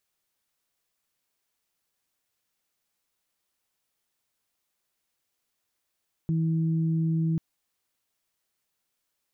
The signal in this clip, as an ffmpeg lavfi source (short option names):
-f lavfi -i "aevalsrc='0.075*sin(2*PI*162*t)+0.0188*sin(2*PI*324*t)':d=1.09:s=44100"